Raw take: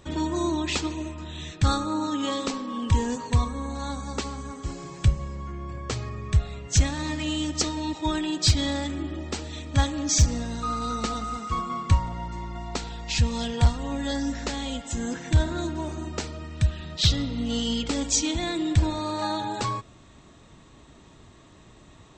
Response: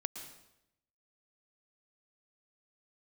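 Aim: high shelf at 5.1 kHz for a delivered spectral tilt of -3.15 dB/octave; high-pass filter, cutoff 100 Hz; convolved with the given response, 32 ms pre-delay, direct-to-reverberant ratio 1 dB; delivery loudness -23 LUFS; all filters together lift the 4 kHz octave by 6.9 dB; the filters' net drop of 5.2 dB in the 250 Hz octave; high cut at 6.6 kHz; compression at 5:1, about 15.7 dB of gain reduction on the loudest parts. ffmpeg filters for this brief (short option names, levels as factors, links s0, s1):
-filter_complex "[0:a]highpass=100,lowpass=6600,equalizer=f=250:t=o:g=-6.5,equalizer=f=4000:t=o:g=6.5,highshelf=f=5100:g=5.5,acompressor=threshold=0.0316:ratio=5,asplit=2[s0][s1];[1:a]atrim=start_sample=2205,adelay=32[s2];[s1][s2]afir=irnorm=-1:irlink=0,volume=0.944[s3];[s0][s3]amix=inputs=2:normalize=0,volume=2.51"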